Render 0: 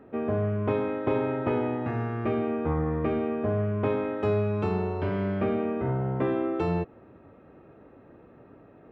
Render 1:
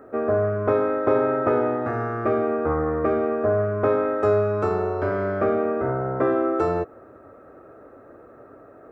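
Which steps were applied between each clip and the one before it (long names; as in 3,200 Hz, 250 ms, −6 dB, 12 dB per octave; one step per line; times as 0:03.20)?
drawn EQ curve 110 Hz 0 dB, 180 Hz −6 dB, 260 Hz +2 dB, 640 Hz +10 dB, 930 Hz +2 dB, 1,300 Hz +13 dB, 3,000 Hz −8 dB, 5,000 Hz +5 dB, 7,700 Hz +11 dB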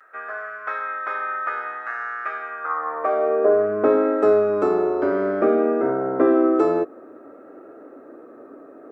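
pitch vibrato 0.56 Hz 33 cents
high-pass filter sweep 1,600 Hz → 280 Hz, 0:02.56–0:03.72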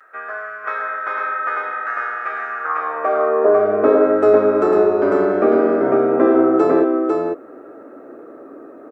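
single-tap delay 499 ms −3.5 dB
level +3 dB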